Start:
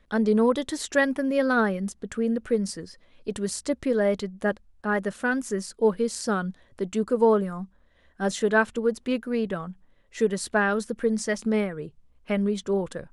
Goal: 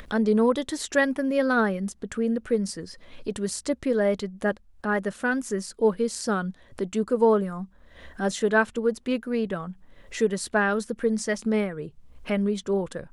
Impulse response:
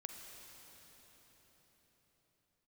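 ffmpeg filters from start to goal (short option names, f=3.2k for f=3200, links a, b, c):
-af "acompressor=mode=upward:threshold=-29dB:ratio=2.5"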